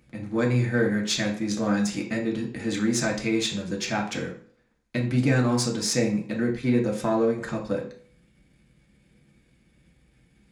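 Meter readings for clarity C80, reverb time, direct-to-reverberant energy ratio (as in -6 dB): 13.0 dB, 0.50 s, -0.5 dB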